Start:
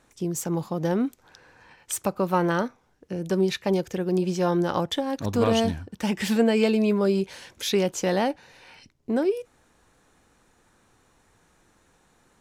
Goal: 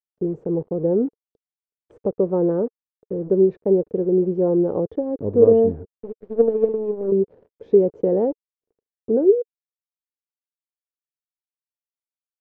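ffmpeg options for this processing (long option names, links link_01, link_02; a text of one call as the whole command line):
ffmpeg -i in.wav -filter_complex "[0:a]asettb=1/sr,asplit=3[link_01][link_02][link_03];[link_01]atrim=end=5.854[link_04];[link_02]atrim=start=5.85:end=7.12,asetpts=PTS-STARTPTS,afade=type=in:duration=0.004:curve=qsin,afade=type=out:start_time=1.266:duration=0.004:curve=qsin,aeval=exprs='0.376*(cos(1*acos(clip(val(0)/0.376,-1,1)))-cos(1*PI/2))+0.0944*(cos(3*acos(clip(val(0)/0.376,-1,1)))-cos(3*PI/2))+0.00531*(cos(6*acos(clip(val(0)/0.376,-1,1)))-cos(6*PI/2))+0.015*(cos(7*acos(clip(val(0)/0.376,-1,1)))-cos(7*PI/2))+0.015*(cos(8*acos(clip(val(0)/0.376,-1,1)))-cos(8*PI/2))':channel_layout=same[link_05];[link_03]atrim=start=7.116[link_06];[link_04][link_05]acrossfade=duration=0.004:curve1=hsin:curve2=qsin[link_07];[link_07][link_06]acrossfade=duration=0.004:curve1=qsin:curve2=hsin,acrusher=bits=5:mix=0:aa=0.5,lowpass=frequency=450:width_type=q:width=4.9,volume=-1dB" out.wav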